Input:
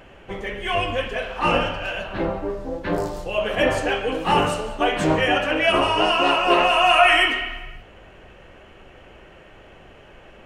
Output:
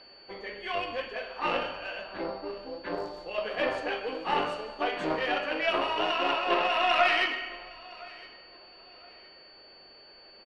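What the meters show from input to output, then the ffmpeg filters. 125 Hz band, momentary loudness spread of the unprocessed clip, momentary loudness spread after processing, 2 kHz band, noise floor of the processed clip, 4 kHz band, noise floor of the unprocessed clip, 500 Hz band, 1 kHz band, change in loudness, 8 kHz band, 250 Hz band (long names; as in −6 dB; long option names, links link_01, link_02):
−19.5 dB, 14 LU, 19 LU, −9.0 dB, −53 dBFS, −9.5 dB, −47 dBFS, −9.5 dB, −9.0 dB, −9.0 dB, below −15 dB, −12.0 dB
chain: -filter_complex "[0:a]aeval=exprs='val(0)+0.0126*sin(2*PI*4500*n/s)':channel_layout=same,aeval=exprs='0.794*(cos(1*acos(clip(val(0)/0.794,-1,1)))-cos(1*PI/2))+0.141*(cos(4*acos(clip(val(0)/0.794,-1,1)))-cos(4*PI/2))':channel_layout=same,acrossover=split=250 4600:gain=0.178 1 0.141[link_01][link_02][link_03];[link_01][link_02][link_03]amix=inputs=3:normalize=0,asplit=2[link_04][link_05];[link_05]aecho=0:1:1013|2026:0.0794|0.0238[link_06];[link_04][link_06]amix=inputs=2:normalize=0,volume=-9dB"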